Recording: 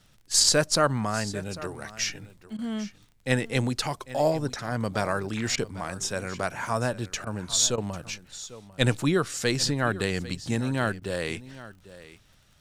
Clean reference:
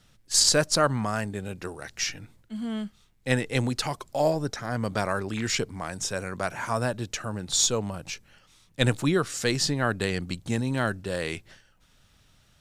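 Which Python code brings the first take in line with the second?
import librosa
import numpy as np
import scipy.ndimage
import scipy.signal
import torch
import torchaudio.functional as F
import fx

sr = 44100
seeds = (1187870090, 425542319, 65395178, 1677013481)

y = fx.fix_declick_ar(x, sr, threshold=6.5)
y = fx.fix_interpolate(y, sr, at_s=(2.57, 5.56, 7.25, 7.76, 11.0), length_ms=15.0)
y = fx.fix_echo_inverse(y, sr, delay_ms=797, level_db=-17.0)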